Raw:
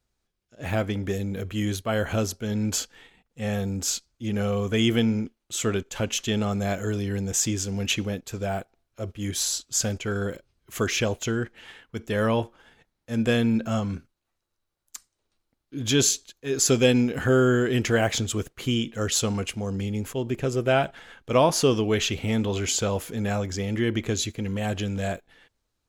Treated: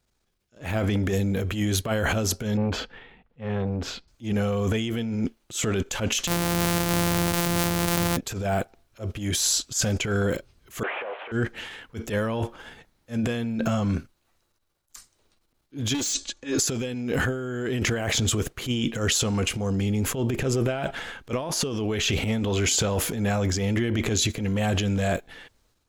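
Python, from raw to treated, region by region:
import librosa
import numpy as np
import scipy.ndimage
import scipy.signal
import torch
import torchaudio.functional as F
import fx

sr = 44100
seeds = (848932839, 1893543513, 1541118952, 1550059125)

y = fx.chain(x, sr, fx.air_absorb(metres=380.0),
    fx.notch(hz=310.0, q=6.5),
    fx.transformer_sat(knee_hz=330.0), at=(2.57, 4.08))
y = fx.chain(y, sr, fx.sample_sort(block=256),
    fx.highpass(hz=79.0, slope=12),
    fx.high_shelf(hz=6500.0, db=9.0), at=(6.27, 8.17))
y = fx.chain(y, sr, fx.delta_mod(bps=16000, step_db=-42.0),
    fx.highpass(hz=560.0, slope=24), at=(10.83, 11.32))
y = fx.chain(y, sr, fx.steep_lowpass(hz=9000.0, slope=48),
    fx.comb(ms=3.5, depth=0.87),
    fx.clip_hard(threshold_db=-19.5), at=(15.94, 16.58))
y = fx.transient(y, sr, attack_db=-11, sustain_db=7)
y = fx.over_compress(y, sr, threshold_db=-27.0, ratio=-1.0)
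y = y * 10.0 ** (2.5 / 20.0)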